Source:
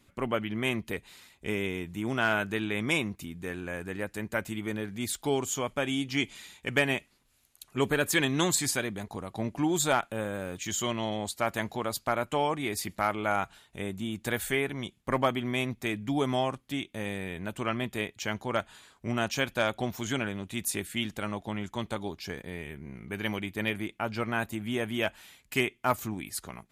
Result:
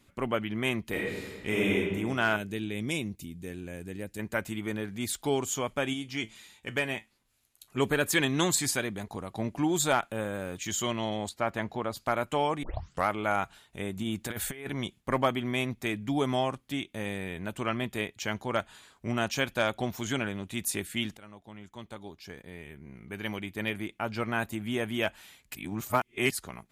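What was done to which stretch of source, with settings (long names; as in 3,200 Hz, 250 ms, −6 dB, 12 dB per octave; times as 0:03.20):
0:00.89–0:01.75: thrown reverb, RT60 1.5 s, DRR −4.5 dB
0:02.36–0:04.19: parametric band 1,200 Hz −14.5 dB 1.8 octaves
0:05.93–0:07.70: tuned comb filter 110 Hz, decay 0.18 s
0:11.29–0:11.97: low-pass filter 2,300 Hz 6 dB per octave
0:12.63: tape start 0.44 s
0:13.96–0:15.00: compressor whose output falls as the input rises −33 dBFS, ratio −0.5
0:21.17–0:24.33: fade in, from −17.5 dB
0:25.55–0:26.31: reverse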